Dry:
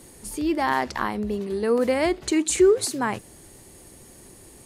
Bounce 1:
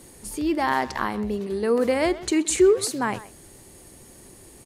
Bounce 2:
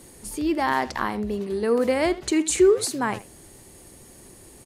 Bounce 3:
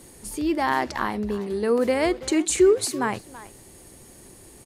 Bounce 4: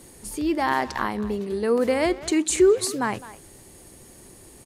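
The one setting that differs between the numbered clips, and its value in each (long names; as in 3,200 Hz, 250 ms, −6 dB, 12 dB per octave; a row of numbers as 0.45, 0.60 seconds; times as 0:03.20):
far-end echo of a speakerphone, delay time: 130, 80, 330, 210 milliseconds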